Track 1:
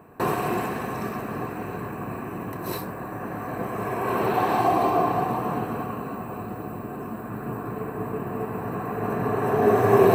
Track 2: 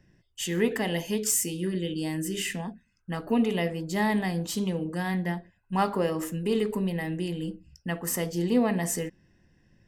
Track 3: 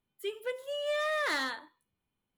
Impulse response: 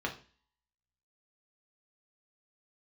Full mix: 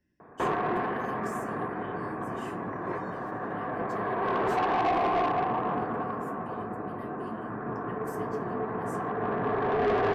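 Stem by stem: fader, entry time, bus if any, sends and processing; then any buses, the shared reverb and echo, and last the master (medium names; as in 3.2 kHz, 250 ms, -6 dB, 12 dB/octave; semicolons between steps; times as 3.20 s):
+1.0 dB, 0.20 s, no bus, no send, steep low-pass 2.1 kHz 48 dB/octave; bass shelf 200 Hz -10 dB; saturation -22.5 dBFS, distortion -9 dB
-8.5 dB, 0.00 s, bus A, send -15.5 dB, peaking EQ 300 Hz +9.5 dB 0.39 oct; compression, threshold -29 dBFS, peak gain reduction 12.5 dB
-14.0 dB, 1.95 s, bus A, no send, sliding maximum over 17 samples
bus A: 0.0 dB, feedback comb 82 Hz, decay 0.18 s, harmonics odd, mix 90%; compression, threshold -51 dBFS, peak gain reduction 11.5 dB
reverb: on, RT60 0.40 s, pre-delay 3 ms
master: none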